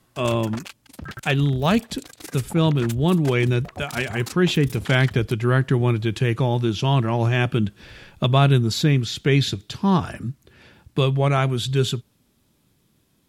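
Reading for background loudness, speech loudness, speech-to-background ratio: -38.0 LUFS, -21.5 LUFS, 16.5 dB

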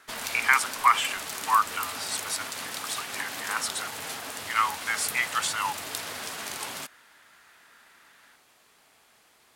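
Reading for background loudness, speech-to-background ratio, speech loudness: -34.0 LUFS, 6.5 dB, -27.5 LUFS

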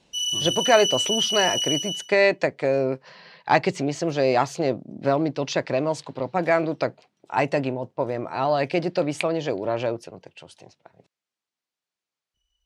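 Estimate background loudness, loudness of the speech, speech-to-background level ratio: -23.5 LUFS, -24.0 LUFS, -0.5 dB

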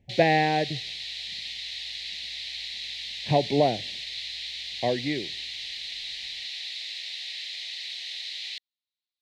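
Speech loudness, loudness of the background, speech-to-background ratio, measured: -26.0 LUFS, -33.5 LUFS, 7.5 dB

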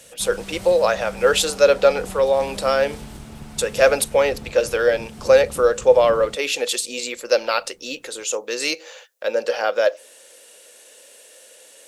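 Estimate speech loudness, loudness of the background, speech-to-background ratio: -19.5 LUFS, -37.5 LUFS, 18.0 dB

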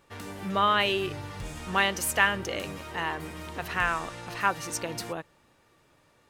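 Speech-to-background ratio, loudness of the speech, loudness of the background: 12.5 dB, -28.0 LUFS, -40.5 LUFS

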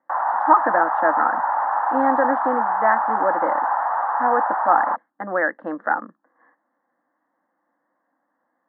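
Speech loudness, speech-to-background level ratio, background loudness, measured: -22.5 LUFS, -0.5 dB, -22.0 LUFS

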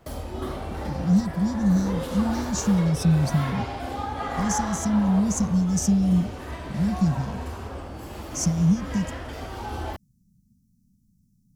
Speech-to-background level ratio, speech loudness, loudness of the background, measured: 9.0 dB, -24.0 LUFS, -33.0 LUFS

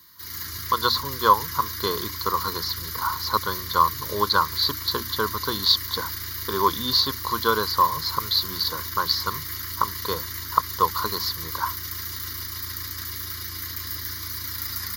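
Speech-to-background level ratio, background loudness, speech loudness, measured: 6.0 dB, -30.5 LUFS, -24.5 LUFS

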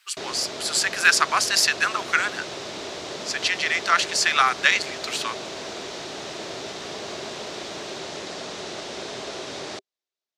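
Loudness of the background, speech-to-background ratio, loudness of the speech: -33.5 LUFS, 12.0 dB, -21.5 LUFS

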